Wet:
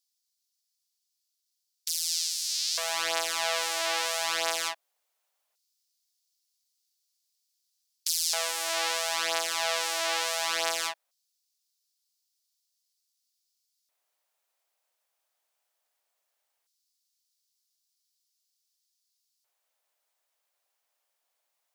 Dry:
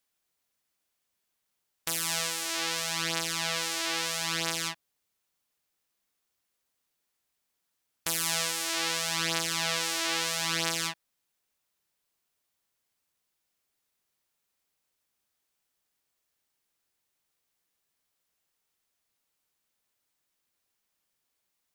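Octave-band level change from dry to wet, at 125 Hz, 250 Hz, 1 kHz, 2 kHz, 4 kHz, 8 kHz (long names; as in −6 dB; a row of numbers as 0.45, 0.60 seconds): below −20 dB, −11.5 dB, +3.5 dB, 0.0 dB, +1.0 dB, +1.0 dB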